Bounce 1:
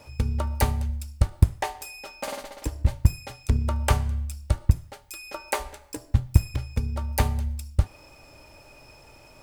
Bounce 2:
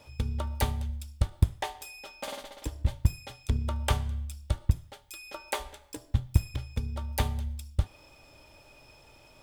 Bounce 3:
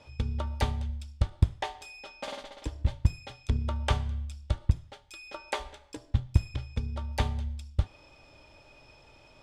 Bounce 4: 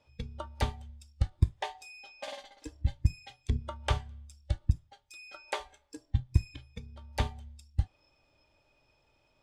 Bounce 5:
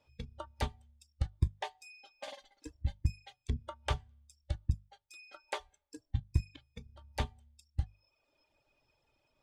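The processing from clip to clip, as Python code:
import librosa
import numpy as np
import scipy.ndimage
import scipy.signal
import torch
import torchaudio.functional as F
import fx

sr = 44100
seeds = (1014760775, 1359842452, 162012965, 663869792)

y1 = fx.peak_eq(x, sr, hz=3400.0, db=9.0, octaves=0.33)
y1 = F.gain(torch.from_numpy(y1), -5.5).numpy()
y2 = scipy.signal.sosfilt(scipy.signal.butter(2, 5900.0, 'lowpass', fs=sr, output='sos'), y1)
y3 = fx.noise_reduce_blind(y2, sr, reduce_db=12)
y3 = F.gain(torch.from_numpy(y3), -2.0).numpy()
y4 = fx.hum_notches(y3, sr, base_hz=50, count=4)
y4 = fx.dereverb_blind(y4, sr, rt60_s=0.82)
y4 = F.gain(torch.from_numpy(y4), -3.5).numpy()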